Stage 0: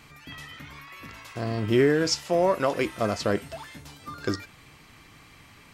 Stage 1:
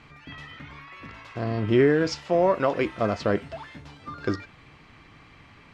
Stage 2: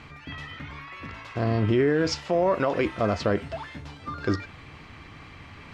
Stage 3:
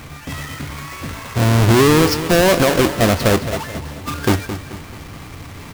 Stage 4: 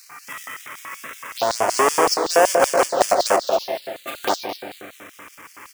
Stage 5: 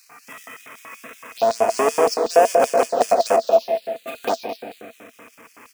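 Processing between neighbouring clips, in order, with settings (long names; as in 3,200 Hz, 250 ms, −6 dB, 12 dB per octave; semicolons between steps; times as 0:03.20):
Bessel low-pass filter 2,900 Hz, order 2; level +1.5 dB
parametric band 83 Hz +7.5 dB 0.34 octaves; reversed playback; upward compression, threshold −42 dBFS; reversed playback; brickwall limiter −17 dBFS, peak gain reduction 7 dB; level +3 dB
each half-wave held at its own peak; repeating echo 217 ms, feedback 42%, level −11.5 dB; level +5.5 dB
feedback echo with a low-pass in the loop 176 ms, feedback 75%, low-pass 1,200 Hz, level −6 dB; phaser swept by the level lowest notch 540 Hz, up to 4,000 Hz, full sweep at −8.5 dBFS; auto-filter high-pass square 5.3 Hz 710–4,400 Hz
hollow resonant body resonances 240/460/660/2,500 Hz, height 13 dB, ringing for 50 ms; level −6.5 dB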